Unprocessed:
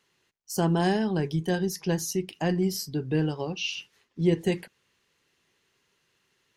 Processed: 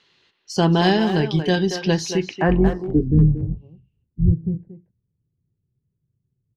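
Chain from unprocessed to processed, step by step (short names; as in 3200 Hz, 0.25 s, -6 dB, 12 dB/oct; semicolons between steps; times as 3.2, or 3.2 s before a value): 2.48–4.32 octaver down 2 oct, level -2 dB; low-pass sweep 4000 Hz -> 120 Hz, 2.08–3.37; speakerphone echo 0.23 s, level -7 dB; gain +7 dB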